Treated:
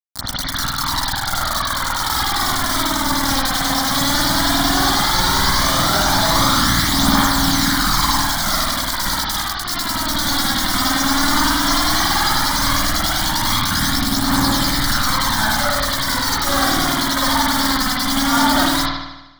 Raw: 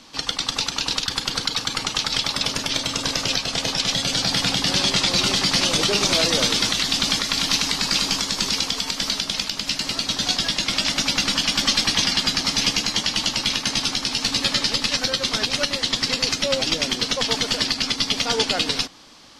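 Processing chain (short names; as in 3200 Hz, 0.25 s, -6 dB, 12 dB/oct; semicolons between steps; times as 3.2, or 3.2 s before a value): bit-crush 4-bit; fixed phaser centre 1100 Hz, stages 4; limiter -19 dBFS, peak gain reduction 9.5 dB; phaser 0.14 Hz, delay 4 ms, feedback 48%; spring tank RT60 1 s, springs 51 ms, chirp 30 ms, DRR -9 dB; gain +6.5 dB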